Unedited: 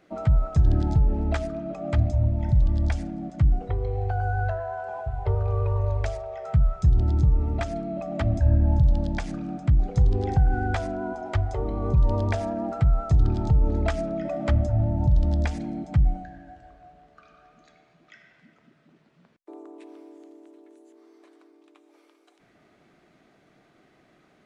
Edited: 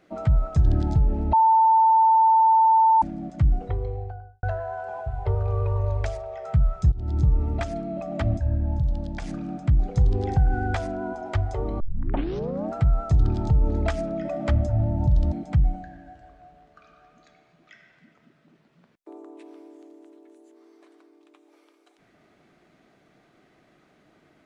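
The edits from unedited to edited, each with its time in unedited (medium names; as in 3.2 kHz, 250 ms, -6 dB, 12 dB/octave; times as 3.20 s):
1.33–3.02 s: bleep 892 Hz -13.5 dBFS
3.65–4.43 s: studio fade out
6.92–7.24 s: fade in, from -22 dB
8.37–9.22 s: gain -5 dB
11.80 s: tape start 0.92 s
15.32–15.73 s: delete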